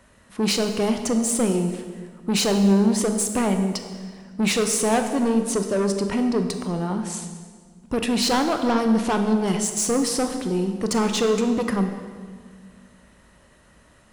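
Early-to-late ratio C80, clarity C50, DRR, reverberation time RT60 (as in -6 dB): 8.5 dB, 7.5 dB, 6.0 dB, 1.8 s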